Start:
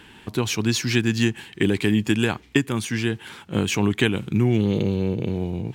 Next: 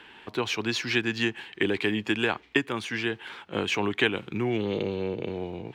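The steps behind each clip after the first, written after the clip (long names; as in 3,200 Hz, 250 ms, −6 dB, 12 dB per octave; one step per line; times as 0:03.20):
three-way crossover with the lows and the highs turned down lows −14 dB, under 350 Hz, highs −16 dB, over 4,300 Hz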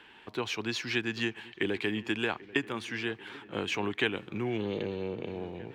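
delay with a low-pass on its return 788 ms, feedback 68%, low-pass 2,000 Hz, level −19.5 dB
level −5 dB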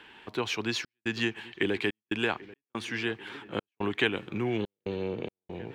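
gate pattern "xxxx.xxxx.xx." 71 BPM −60 dB
level +2.5 dB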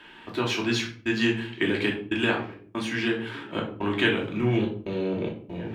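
rectangular room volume 450 cubic metres, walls furnished, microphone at 2.8 metres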